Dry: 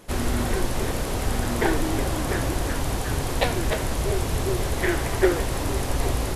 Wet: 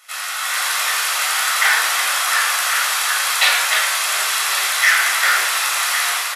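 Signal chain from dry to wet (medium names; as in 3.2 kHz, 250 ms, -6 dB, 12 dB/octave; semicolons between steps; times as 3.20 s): high-pass 1.2 kHz 24 dB/octave; level rider gain up to 8 dB; delay 1101 ms -12 dB; reverberation RT60 0.75 s, pre-delay 14 ms, DRR -3 dB; transformer saturation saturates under 3.1 kHz; trim +2.5 dB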